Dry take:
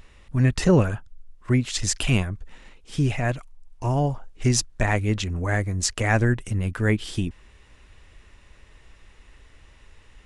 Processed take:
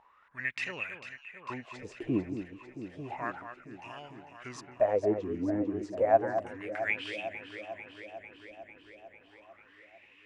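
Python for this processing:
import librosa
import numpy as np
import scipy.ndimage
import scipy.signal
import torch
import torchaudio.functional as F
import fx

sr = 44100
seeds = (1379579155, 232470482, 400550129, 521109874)

y = fx.wah_lfo(x, sr, hz=0.32, low_hz=290.0, high_hz=2500.0, q=9.1)
y = fx.echo_alternate(y, sr, ms=224, hz=2100.0, feedback_pct=82, wet_db=-9.0)
y = y * 10.0 ** (8.5 / 20.0)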